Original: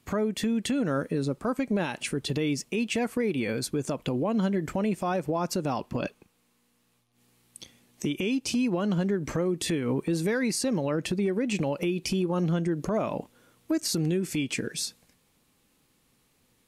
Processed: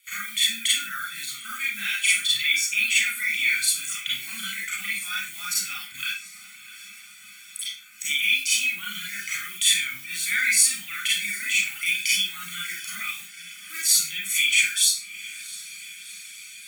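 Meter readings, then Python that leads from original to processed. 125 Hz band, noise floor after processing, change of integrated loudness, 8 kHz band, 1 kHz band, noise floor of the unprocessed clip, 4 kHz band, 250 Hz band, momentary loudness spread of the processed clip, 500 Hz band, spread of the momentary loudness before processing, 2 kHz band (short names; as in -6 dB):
under -20 dB, -46 dBFS, +6.0 dB, +14.5 dB, -6.0 dB, -69 dBFS, +14.0 dB, -25.0 dB, 18 LU, under -35 dB, 5 LU, +14.5 dB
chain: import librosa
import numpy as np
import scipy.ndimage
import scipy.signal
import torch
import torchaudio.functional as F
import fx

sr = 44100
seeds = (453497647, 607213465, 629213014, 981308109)

p1 = fx.block_float(x, sr, bits=5)
p2 = scipy.signal.sosfilt(scipy.signal.ellip(4, 1.0, 40, 1600.0, 'highpass', fs=sr, output='sos'), p1)
p3 = p2 + fx.echo_diffused(p2, sr, ms=737, feedback_pct=70, wet_db=-15, dry=0)
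p4 = fx.dereverb_blind(p3, sr, rt60_s=0.92)
p5 = fx.peak_eq(p4, sr, hz=5100.0, db=-10.5, octaves=0.52)
p6 = p5 + 0.9 * np.pad(p5, (int(0.9 * sr / 1000.0), 0))[:len(p5)]
p7 = fx.rev_schroeder(p6, sr, rt60_s=0.37, comb_ms=31, drr_db=-6.5)
y = p7 * 10.0 ** (7.5 / 20.0)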